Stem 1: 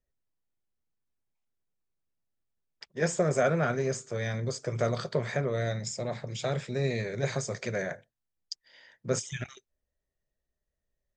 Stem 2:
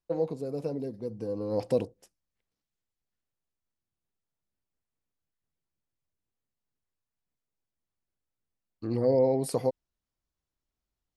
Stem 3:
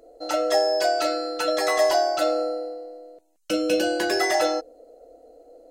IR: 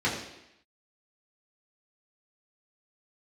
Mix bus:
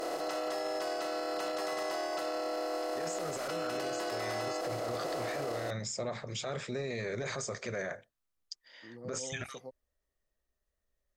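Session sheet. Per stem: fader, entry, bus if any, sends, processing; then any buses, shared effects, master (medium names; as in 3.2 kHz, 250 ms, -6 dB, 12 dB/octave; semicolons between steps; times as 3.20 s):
-0.5 dB, 0.00 s, no send, peaking EQ 140 Hz -7.5 dB 0.97 oct; compressor with a negative ratio -32 dBFS, ratio -1
-19.5 dB, 0.00 s, no send, high-pass 130 Hz 24 dB/octave
-10.0 dB, 0.00 s, no send, spectral levelling over time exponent 0.2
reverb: none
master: peaking EQ 1.2 kHz +6.5 dB 0.27 oct; peak limiter -27.5 dBFS, peak gain reduction 14.5 dB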